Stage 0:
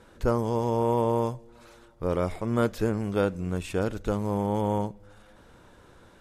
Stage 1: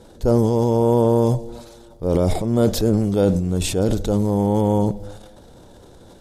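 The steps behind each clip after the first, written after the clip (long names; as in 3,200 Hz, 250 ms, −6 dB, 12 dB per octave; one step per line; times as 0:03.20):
flat-topped bell 1,700 Hz −11 dB
transient designer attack −4 dB, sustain +10 dB
level +8.5 dB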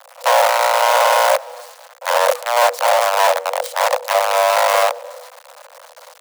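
sub-octave generator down 1 octave, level +1 dB
log-companded quantiser 2 bits
frequency shifter +480 Hz
level −7 dB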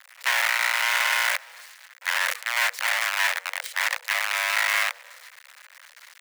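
high-pass with resonance 1,900 Hz, resonance Q 2.8
level −6.5 dB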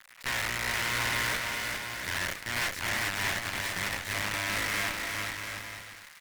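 tube saturation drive 28 dB, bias 0.7
on a send: bouncing-ball delay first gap 410 ms, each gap 0.7×, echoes 5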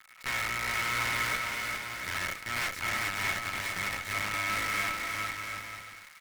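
hollow resonant body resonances 1,300/2,200 Hz, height 14 dB, ringing for 70 ms
level −3 dB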